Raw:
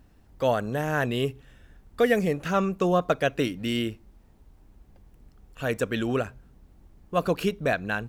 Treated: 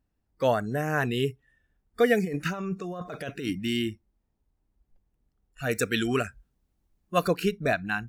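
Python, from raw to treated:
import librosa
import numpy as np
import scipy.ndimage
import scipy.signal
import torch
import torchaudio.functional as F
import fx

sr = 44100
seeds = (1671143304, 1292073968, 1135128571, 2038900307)

y = fx.noise_reduce_blind(x, sr, reduce_db=20)
y = fx.over_compress(y, sr, threshold_db=-31.0, ratio=-1.0, at=(2.24, 3.59), fade=0.02)
y = fx.high_shelf(y, sr, hz=2200.0, db=9.5, at=(5.71, 7.28))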